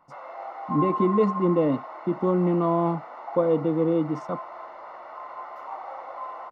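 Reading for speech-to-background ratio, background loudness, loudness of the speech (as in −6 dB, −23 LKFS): 11.0 dB, −35.5 LKFS, −24.5 LKFS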